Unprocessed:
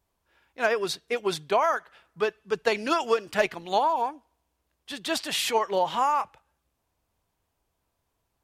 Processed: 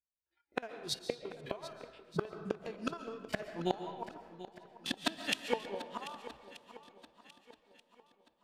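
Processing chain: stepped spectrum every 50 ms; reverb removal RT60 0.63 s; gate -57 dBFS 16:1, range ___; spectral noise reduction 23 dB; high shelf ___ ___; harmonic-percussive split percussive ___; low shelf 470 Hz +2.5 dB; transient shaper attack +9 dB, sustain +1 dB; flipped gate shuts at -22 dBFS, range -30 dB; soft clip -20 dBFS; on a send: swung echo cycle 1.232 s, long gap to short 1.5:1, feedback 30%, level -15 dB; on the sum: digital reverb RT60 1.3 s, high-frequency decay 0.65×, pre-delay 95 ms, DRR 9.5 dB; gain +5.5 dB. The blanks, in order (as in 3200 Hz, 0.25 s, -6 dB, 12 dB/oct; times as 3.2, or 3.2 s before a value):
-13 dB, 7100 Hz, -3.5 dB, -6 dB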